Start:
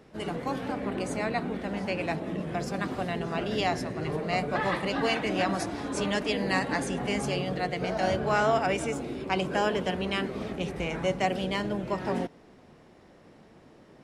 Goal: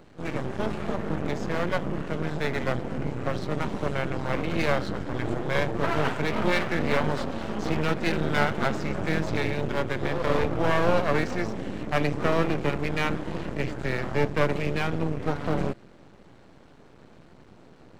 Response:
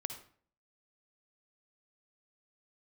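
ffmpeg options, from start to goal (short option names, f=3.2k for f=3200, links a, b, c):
-filter_complex "[0:a]acrossover=split=4800[a][b];[b]acompressor=threshold=-55dB:ratio=4:attack=1:release=60[c];[a][c]amix=inputs=2:normalize=0,asetrate=34398,aresample=44100,aeval=exprs='max(val(0),0)':c=same,volume=6.5dB"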